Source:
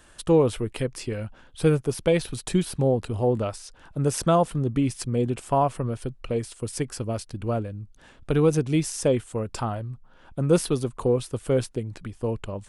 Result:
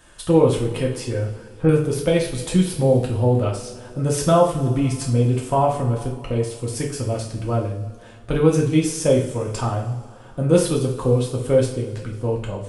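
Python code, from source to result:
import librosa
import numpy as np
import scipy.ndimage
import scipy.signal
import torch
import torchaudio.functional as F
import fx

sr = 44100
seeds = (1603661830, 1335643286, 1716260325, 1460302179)

y = fx.lowpass(x, sr, hz=1900.0, slope=24, at=(1.08, 1.69))
y = fx.rev_double_slope(y, sr, seeds[0], early_s=0.46, late_s=2.7, knee_db=-18, drr_db=-2.0)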